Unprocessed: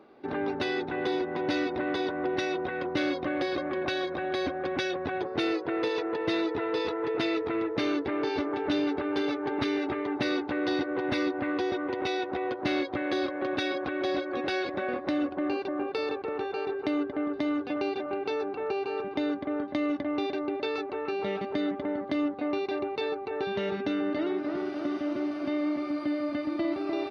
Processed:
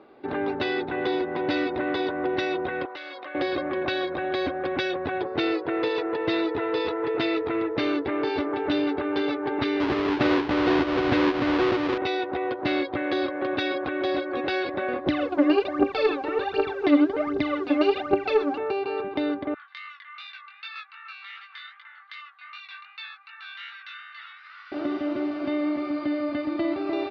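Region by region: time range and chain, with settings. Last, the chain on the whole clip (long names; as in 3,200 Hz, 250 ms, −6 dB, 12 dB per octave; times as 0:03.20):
0:02.85–0:03.35: high-pass filter 760 Hz + downward compressor 12 to 1, threshold −37 dBFS
0:09.80–0:11.98: each half-wave held at its own peak + high-pass filter 47 Hz + high-frequency loss of the air 130 metres
0:15.06–0:18.58: bit-depth reduction 10 bits, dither none + phase shifter 1.3 Hz, delay 3.9 ms, feedback 77%
0:19.54–0:24.72: Butterworth high-pass 1,200 Hz 48 dB per octave + chorus effect 2.6 Hz, delay 17 ms, depth 6 ms
whole clip: low-pass filter 4,600 Hz 24 dB per octave; parametric band 200 Hz −4 dB 0.57 octaves; level +3.5 dB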